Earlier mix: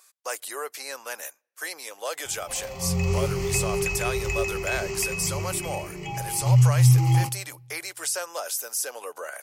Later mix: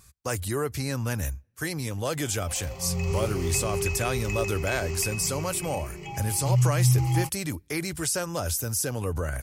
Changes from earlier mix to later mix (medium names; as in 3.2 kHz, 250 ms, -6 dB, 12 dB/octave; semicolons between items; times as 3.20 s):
speech: remove high-pass 510 Hz 24 dB/octave; background: send off